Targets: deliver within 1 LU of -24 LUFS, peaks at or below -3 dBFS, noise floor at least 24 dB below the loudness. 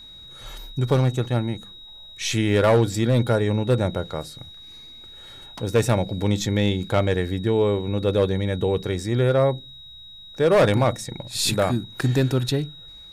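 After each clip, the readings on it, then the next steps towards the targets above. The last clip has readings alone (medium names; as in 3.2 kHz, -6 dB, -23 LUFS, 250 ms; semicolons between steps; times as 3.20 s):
clipped samples 0.6%; clipping level -11.5 dBFS; steady tone 3.8 kHz; tone level -41 dBFS; loudness -22.0 LUFS; peak level -11.5 dBFS; loudness target -24.0 LUFS
-> clip repair -11.5 dBFS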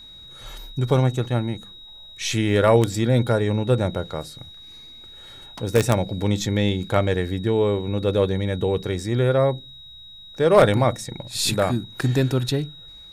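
clipped samples 0.0%; steady tone 3.8 kHz; tone level -41 dBFS
-> band-stop 3.8 kHz, Q 30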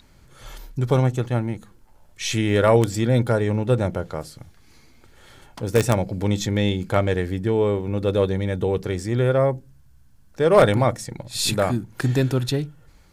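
steady tone not found; loudness -21.5 LUFS; peak level -2.5 dBFS; loudness target -24.0 LUFS
-> trim -2.5 dB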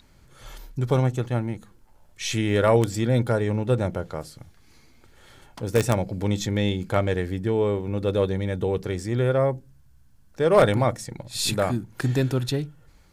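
loudness -24.0 LUFS; peak level -5.0 dBFS; noise floor -55 dBFS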